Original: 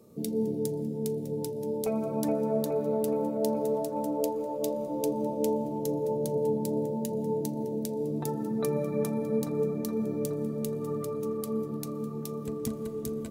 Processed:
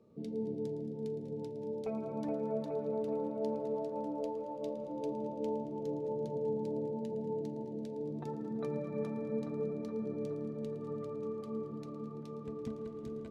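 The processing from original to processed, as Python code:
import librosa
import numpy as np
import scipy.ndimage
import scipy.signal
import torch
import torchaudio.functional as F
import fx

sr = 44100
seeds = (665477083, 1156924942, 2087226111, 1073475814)

y = scipy.signal.sosfilt(scipy.signal.butter(2, 3200.0, 'lowpass', fs=sr, output='sos'), x)
y = fx.echo_thinned(y, sr, ms=112, feedback_pct=79, hz=190.0, wet_db=-14.0)
y = y * 10.0 ** (-8.0 / 20.0)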